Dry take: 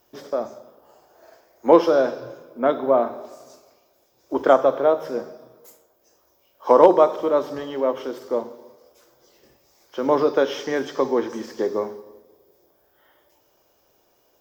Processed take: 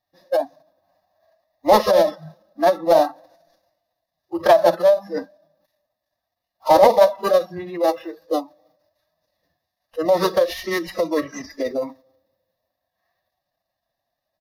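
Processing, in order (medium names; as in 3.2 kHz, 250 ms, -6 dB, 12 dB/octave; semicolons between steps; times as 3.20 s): dead-time distortion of 0.097 ms; spectral noise reduction 20 dB; in parallel at 0 dB: compression, threshold -25 dBFS, peak gain reduction 17 dB; on the sum: static phaser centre 1.7 kHz, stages 8; saturation -7 dBFS, distortion -19 dB; formant-preserving pitch shift +4 st; resampled via 32 kHz; trim +4.5 dB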